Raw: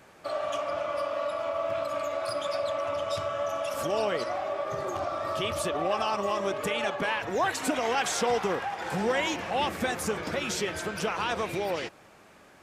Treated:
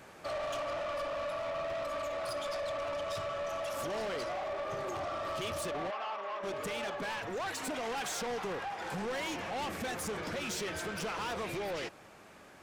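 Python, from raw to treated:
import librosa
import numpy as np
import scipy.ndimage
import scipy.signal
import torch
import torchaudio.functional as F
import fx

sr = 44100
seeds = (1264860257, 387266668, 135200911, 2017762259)

y = fx.rider(x, sr, range_db=4, speed_s=2.0)
y = 10.0 ** (-32.0 / 20.0) * np.tanh(y / 10.0 ** (-32.0 / 20.0))
y = fx.bandpass_edges(y, sr, low_hz=590.0, high_hz=2800.0, at=(5.9, 6.42), fade=0.02)
y = y * librosa.db_to_amplitude(-1.5)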